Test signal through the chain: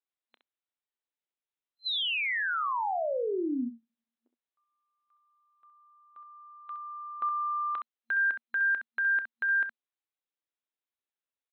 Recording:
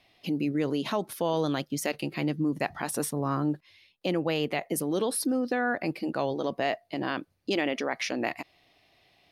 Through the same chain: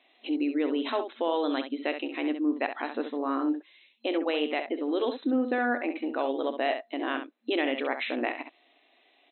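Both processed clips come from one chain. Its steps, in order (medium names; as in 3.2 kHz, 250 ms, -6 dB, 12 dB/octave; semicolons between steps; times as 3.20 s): FFT band-pass 230–4100 Hz; on a send: early reflections 30 ms -17 dB, 66 ms -8.5 dB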